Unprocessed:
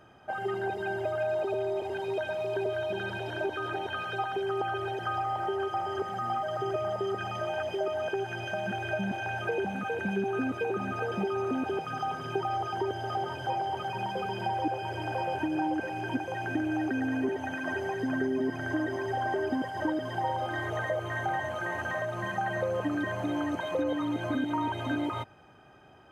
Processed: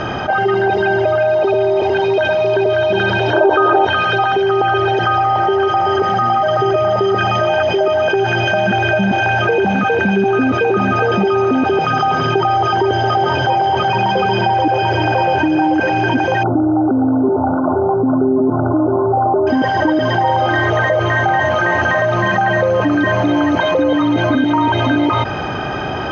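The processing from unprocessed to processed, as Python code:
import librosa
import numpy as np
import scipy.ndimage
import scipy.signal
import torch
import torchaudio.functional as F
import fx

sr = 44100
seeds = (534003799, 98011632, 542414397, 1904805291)

y = fx.band_shelf(x, sr, hz=680.0, db=12.5, octaves=2.4, at=(3.33, 3.85))
y = fx.brickwall_lowpass(y, sr, high_hz=1500.0, at=(16.43, 19.47))
y = scipy.signal.sosfilt(scipy.signal.butter(8, 6100.0, 'lowpass', fs=sr, output='sos'), y)
y = fx.env_flatten(y, sr, amount_pct=70)
y = F.gain(torch.from_numpy(y), 6.5).numpy()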